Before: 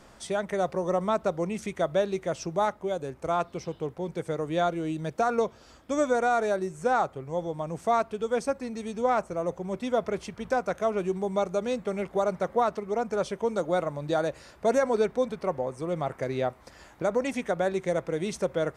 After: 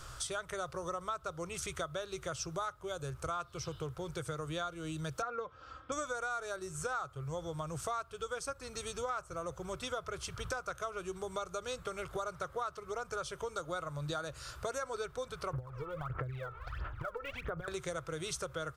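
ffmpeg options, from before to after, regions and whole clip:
-filter_complex "[0:a]asettb=1/sr,asplit=3[s0][s1][s2];[s0]atrim=end=5.224[s3];[s1]atrim=start=5.22:end=5.92,asetpts=PTS-STARTPTS,afade=t=in:d=0.004:c=qsin,afade=t=out:st=0.696:d=0.004:c=qsin,highpass=110,lowpass=2000,aecho=1:1:3.8:0.59,atrim=end_sample=30870[s4];[s2]atrim=start=5.916[s5];[s3][s4]acrossfade=d=0.004:c1=hsin:c2=qsin[s6];[s6][s5]acrossfade=d=0.004:c1=qsin:c2=hsin,asettb=1/sr,asplit=3[s7][s8][s9];[s7]atrim=end=15.534[s10];[s8]atrim=start=15.53:end=17.68,asetpts=PTS-STARTPTS,afade=t=in:d=0.004:c=qsin,afade=t=out:st=2.146:d=0.004:c=qsin,lowpass=f=2700:w=0.5412,lowpass=f=2700:w=1.3066,acompressor=threshold=0.0178:ratio=12:attack=3.2:release=140:knee=1:detection=peak,aphaser=in_gain=1:out_gain=1:delay=2.3:decay=0.78:speed=1.5:type=sinusoidal[s11];[s9]atrim=start=17.676[s12];[s10][s11]acrossfade=d=0.004:c1=hsin:c2=qsin[s13];[s13][s12]acrossfade=d=0.004:c1=qsin:c2=hsin,firequalizer=gain_entry='entry(130,0);entry(210,-28);entry(310,-15);entry(470,-13);entry(830,-15);entry(1300,2);entry(1900,-12);entry(3100,-3);entry(8800,0)':delay=0.05:min_phase=1,acompressor=threshold=0.00501:ratio=5,volume=2.99"

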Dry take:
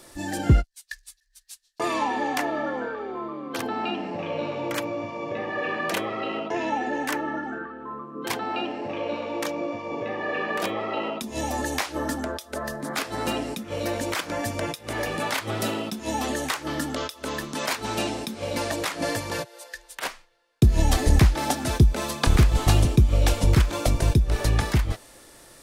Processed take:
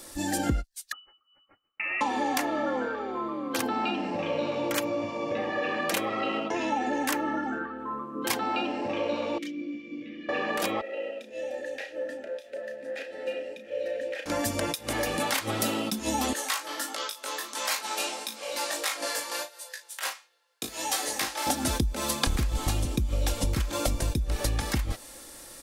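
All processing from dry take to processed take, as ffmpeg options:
-filter_complex "[0:a]asettb=1/sr,asplit=3[s0][s1][s2];[s0]atrim=end=0.924[s3];[s1]atrim=start=0.92:end=2.01,asetpts=PTS-STARTPTS,afade=t=in:d=0.004:c=qsin,afade=t=out:st=1.086:d=0.004:c=qsin,acompressor=threshold=0.0355:ratio=4:attack=3.2:release=140:knee=1:detection=peak,lowpass=f=2600:t=q:w=0.5098,lowpass=f=2600:t=q:w=0.6013,lowpass=f=2600:t=q:w=0.9,lowpass=f=2600:t=q:w=2.563,afreqshift=-3000[s4];[s2]atrim=start=2.006[s5];[s3][s4]acrossfade=d=0.004:c1=hsin:c2=qsin[s6];[s6][s5]acrossfade=d=0.004:c1=qsin:c2=hsin,asettb=1/sr,asplit=3[s7][s8][s9];[s7]atrim=end=9.384[s10];[s8]atrim=start=9.38:end=10.29,asetpts=PTS-STARTPTS,afade=t=in:d=0.004:c=qsin,afade=t=out:st=0.906:d=0.004:c=qsin,asplit=3[s11][s12][s13];[s11]bandpass=f=270:t=q:w=8,volume=1[s14];[s12]bandpass=f=2290:t=q:w=8,volume=0.501[s15];[s13]bandpass=f=3010:t=q:w=8,volume=0.355[s16];[s14][s15][s16]amix=inputs=3:normalize=0,bass=f=250:g=7,treble=f=4000:g=8,aecho=1:1:5.9:0.48,atrim=end_sample=40131[s17];[s9]atrim=start=10.286[s18];[s10][s17]acrossfade=d=0.004:c1=hsin:c2=qsin[s19];[s19][s18]acrossfade=d=0.004:c1=qsin:c2=hsin,asettb=1/sr,asplit=3[s20][s21][s22];[s20]atrim=end=10.814[s23];[s21]atrim=start=10.81:end=14.26,asetpts=PTS-STARTPTS,afade=t=in:d=0.004:c=qsin,afade=t=out:st=3.446:d=0.004:c=qsin,aeval=exprs='val(0)+0.5*0.0119*sgn(val(0))':c=same,asplit=3[s24][s25][s26];[s24]bandpass=f=530:t=q:w=8,volume=1[s27];[s25]bandpass=f=1840:t=q:w=8,volume=0.501[s28];[s26]bandpass=f=2480:t=q:w=8,volume=0.355[s29];[s27][s28][s29]amix=inputs=3:normalize=0,asplit=2[s30][s31];[s31]adelay=33,volume=0.422[s32];[s30][s32]amix=inputs=2:normalize=0,atrim=end_sample=152145[s33];[s22]atrim=start=14.256[s34];[s23][s33]acrossfade=d=0.004:c1=hsin:c2=qsin[s35];[s35][s34]acrossfade=d=0.004:c1=qsin:c2=hsin,asettb=1/sr,asplit=3[s36][s37][s38];[s36]atrim=end=16.334[s39];[s37]atrim=start=16.33:end=21.47,asetpts=PTS-STARTPTS,afade=t=in:d=0.004:c=qsin,afade=t=out:st=5.136:d=0.004:c=qsin,highpass=650,flanger=delay=17.5:depth=3.4:speed=1.5,asplit=2[s40][s41];[s41]adelay=37,volume=0.355[s42];[s40][s42]amix=inputs=2:normalize=0,atrim=end_sample=226674[s43];[s38]atrim=start=21.466[s44];[s39][s43]acrossfade=d=0.004:c1=hsin:c2=qsin[s45];[s45][s44]acrossfade=d=0.004:c1=qsin:c2=hsin,acompressor=threshold=0.0562:ratio=5,highshelf=f=4800:g=7,aecho=1:1:3.7:0.34"

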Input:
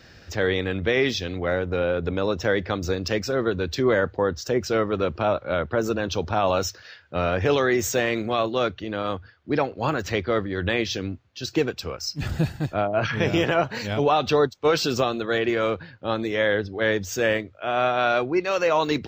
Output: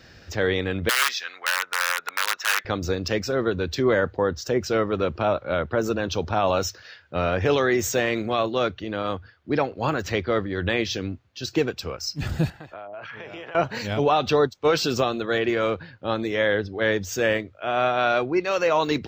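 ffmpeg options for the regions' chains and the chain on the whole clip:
-filter_complex "[0:a]asettb=1/sr,asplit=3[s0][s1][s2];[s0]atrim=end=0.894[s3];[s1]atrim=start=0.89:end=2.65,asetpts=PTS-STARTPTS,afade=t=in:d=0.004:c=qsin,afade=t=out:st=1.756:d=0.004:c=qsin,equalizer=f=3200:w=5.3:g=-6,aeval=exprs='(mod(5.96*val(0)+1,2)-1)/5.96':c=same,highpass=f=1400:t=q:w=2.4[s4];[s2]atrim=start=2.646[s5];[s3][s4]acrossfade=d=0.004:c1=hsin:c2=qsin[s6];[s6][s5]acrossfade=d=0.004:c1=qsin:c2=hsin,asettb=1/sr,asplit=3[s7][s8][s9];[s7]atrim=end=12.504[s10];[s8]atrim=start=12.5:end=13.55,asetpts=PTS-STARTPTS,afade=t=in:d=0.004:c=qsin,afade=t=out:st=1.046:d=0.004:c=qsin,acrossover=split=440 3400:gain=0.2 1 0.2[s11][s12][s13];[s11][s12][s13]amix=inputs=3:normalize=0,acompressor=threshold=0.0178:ratio=6:attack=3.2:release=140:knee=1:detection=peak[s14];[s9]atrim=start=13.546[s15];[s10][s14]acrossfade=d=0.004:c1=hsin:c2=qsin[s16];[s16][s15]acrossfade=d=0.004:c1=qsin:c2=hsin"

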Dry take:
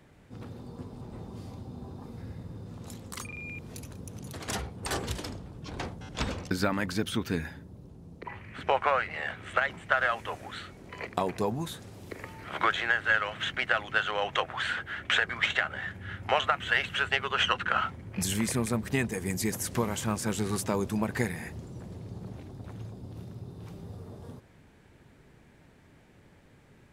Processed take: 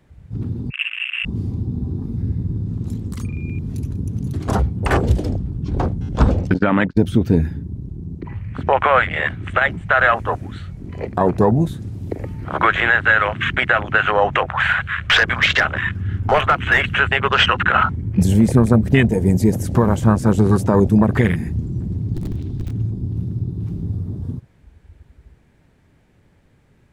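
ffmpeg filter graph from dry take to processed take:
-filter_complex "[0:a]asettb=1/sr,asplit=3[s0][s1][s2];[s0]atrim=end=0.704[s3];[s1]atrim=start=0.7:end=1.25,asetpts=PTS-STARTPTS,afade=t=in:d=0.004:c=qsin,afade=t=out:st=0.546:d=0.004:c=qsin,lowshelf=f=130:g=11.5,lowpass=f=2400:t=q:w=0.5098,lowpass=f=2400:t=q:w=0.6013,lowpass=f=2400:t=q:w=0.9,lowpass=f=2400:t=q:w=2.563,afreqshift=-2800[s4];[s2]atrim=start=1.246[s5];[s3][s4]acrossfade=d=0.004:c1=hsin:c2=qsin[s6];[s6][s5]acrossfade=d=0.004:c1=qsin:c2=hsin,asettb=1/sr,asplit=3[s7][s8][s9];[s7]atrim=end=6.544[s10];[s8]atrim=start=6.54:end=6.97,asetpts=PTS-STARTPTS,afade=t=in:d=0.004:c=qsin,afade=t=out:st=0.426:d=0.004:c=qsin,highpass=140,lowpass=3400,agate=range=0.0158:threshold=0.0158:ratio=16:release=100:detection=peak[s11];[s9]atrim=start=6.966[s12];[s10][s11]acrossfade=d=0.004:c1=hsin:c2=qsin[s13];[s13][s12]acrossfade=d=0.004:c1=qsin:c2=hsin,asettb=1/sr,asplit=3[s14][s15][s16];[s14]atrim=end=14.424[s17];[s15]atrim=start=14.42:end=16.81,asetpts=PTS-STARTPTS,afade=t=in:d=0.004:c=qsin,afade=t=out:st=2.386:d=0.004:c=qsin,bandreject=f=60:t=h:w=6,bandreject=f=120:t=h:w=6,bandreject=f=180:t=h:w=6,bandreject=f=240:t=h:w=6,bandreject=f=300:t=h:w=6,bandreject=f=360:t=h:w=6,bandreject=f=420:t=h:w=6,asoftclip=type=hard:threshold=0.0631,asplit=6[s18][s19][s20][s21][s22][s23];[s19]adelay=185,afreqshift=-120,volume=0.0891[s24];[s20]adelay=370,afreqshift=-240,volume=0.0569[s25];[s21]adelay=555,afreqshift=-360,volume=0.0363[s26];[s22]adelay=740,afreqshift=-480,volume=0.0234[s27];[s23]adelay=925,afreqshift=-600,volume=0.015[s28];[s18][s24][s25][s26][s27][s28]amix=inputs=6:normalize=0,atrim=end_sample=105399[s29];[s16]atrim=start=16.806[s30];[s17][s29]acrossfade=d=0.004:c1=hsin:c2=qsin[s31];[s31][s30]acrossfade=d=0.004:c1=qsin:c2=hsin,asettb=1/sr,asplit=3[s32][s33][s34];[s32]atrim=end=22.144[s35];[s33]atrim=start=22.14:end=22.71,asetpts=PTS-STARTPTS,afade=t=in:d=0.004:c=qsin,afade=t=out:st=0.566:d=0.004:c=qsin,equalizer=f=3400:t=o:w=1.5:g=10,acrossover=split=400|3000[s36][s37][s38];[s37]acompressor=threshold=0.00355:ratio=3:attack=3.2:release=140:knee=2.83:detection=peak[s39];[s36][s39][s38]amix=inputs=3:normalize=0,aeval=exprs='(mod(50.1*val(0)+1,2)-1)/50.1':c=same[s40];[s34]atrim=start=22.706[s41];[s35][s40]acrossfade=d=0.004:c1=hsin:c2=qsin[s42];[s42][s41]acrossfade=d=0.004:c1=qsin:c2=hsin,lowshelf=f=130:g=8,afwtdn=0.02,alimiter=level_in=7.5:limit=0.891:release=50:level=0:latency=1,volume=0.75"

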